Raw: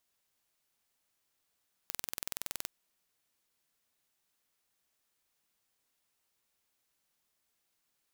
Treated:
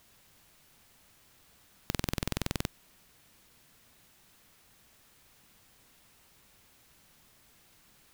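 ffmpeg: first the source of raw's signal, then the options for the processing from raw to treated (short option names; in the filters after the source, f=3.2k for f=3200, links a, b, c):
-f lavfi -i "aevalsrc='0.355*eq(mod(n,2070),0)':d=0.79:s=44100"
-af "bass=f=250:g=9,treble=f=4k:g=-4,aeval=exprs='0.251*sin(PI/2*6.31*val(0)/0.251)':c=same"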